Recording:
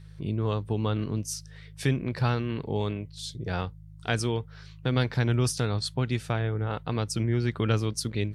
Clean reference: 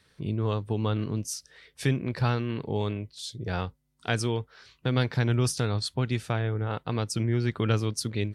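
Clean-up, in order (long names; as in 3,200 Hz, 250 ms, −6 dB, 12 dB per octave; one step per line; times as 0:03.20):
hum removal 52.3 Hz, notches 3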